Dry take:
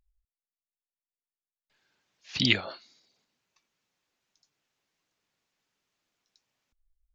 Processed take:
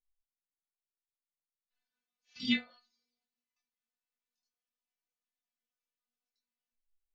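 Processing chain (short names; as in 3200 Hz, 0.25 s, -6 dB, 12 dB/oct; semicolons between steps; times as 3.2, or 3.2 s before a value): chorus voices 4, 0.62 Hz, delay 23 ms, depth 3.3 ms; metallic resonator 240 Hz, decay 0.26 s, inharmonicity 0.002; upward expander 1.5:1, over -54 dBFS; gain +7.5 dB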